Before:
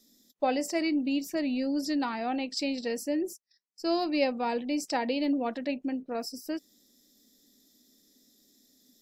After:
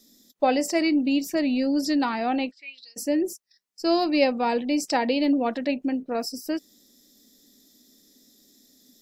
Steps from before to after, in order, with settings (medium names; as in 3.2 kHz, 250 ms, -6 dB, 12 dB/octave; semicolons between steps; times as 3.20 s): 2.50–2.96 s: band-pass filter 1.3 kHz -> 6.3 kHz, Q 12; trim +6 dB